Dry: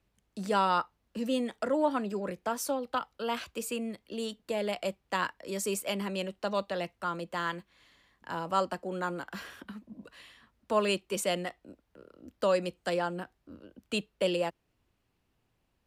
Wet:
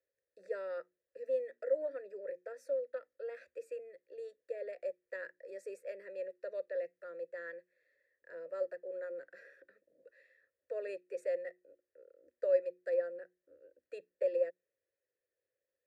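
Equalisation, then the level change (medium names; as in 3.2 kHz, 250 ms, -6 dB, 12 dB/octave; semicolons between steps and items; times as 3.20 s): vowel filter e; hum notches 60/120/180/240/300/360 Hz; static phaser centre 820 Hz, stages 6; +1.5 dB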